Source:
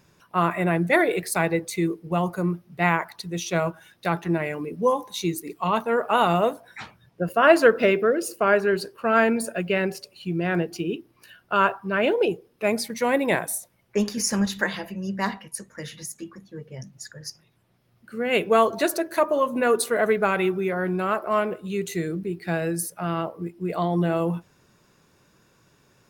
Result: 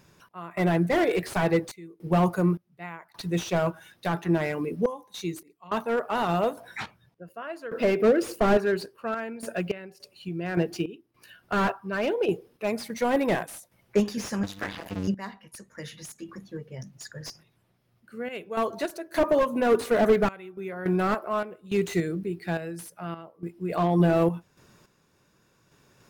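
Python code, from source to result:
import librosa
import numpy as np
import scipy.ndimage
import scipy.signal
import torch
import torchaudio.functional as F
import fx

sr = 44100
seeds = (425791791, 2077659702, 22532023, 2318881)

y = fx.cycle_switch(x, sr, every=2, mode='muted', at=(14.43, 15.08))
y = fx.tremolo_random(y, sr, seeds[0], hz=3.5, depth_pct=95)
y = fx.slew_limit(y, sr, full_power_hz=55.0)
y = F.gain(torch.from_numpy(y), 3.5).numpy()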